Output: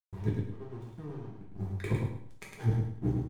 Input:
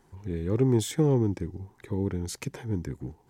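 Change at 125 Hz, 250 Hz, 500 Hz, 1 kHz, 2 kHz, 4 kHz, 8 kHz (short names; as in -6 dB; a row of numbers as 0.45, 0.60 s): -3.5 dB, -9.0 dB, -12.0 dB, -6.0 dB, -2.0 dB, -14.5 dB, under -15 dB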